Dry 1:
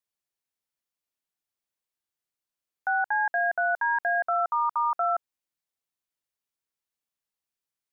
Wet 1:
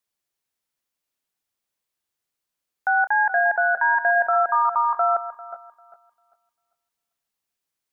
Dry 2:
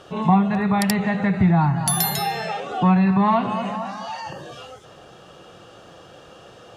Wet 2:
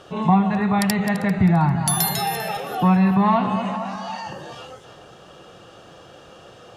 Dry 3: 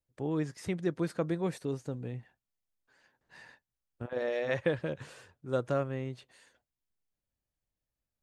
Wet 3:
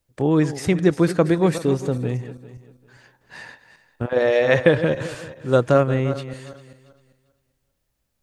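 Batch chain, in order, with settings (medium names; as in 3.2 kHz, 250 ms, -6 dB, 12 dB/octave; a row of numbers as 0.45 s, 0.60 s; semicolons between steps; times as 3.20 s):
backward echo that repeats 198 ms, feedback 46%, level -12.5 dB; normalise loudness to -20 LUFS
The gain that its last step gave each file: +5.5 dB, 0.0 dB, +14.5 dB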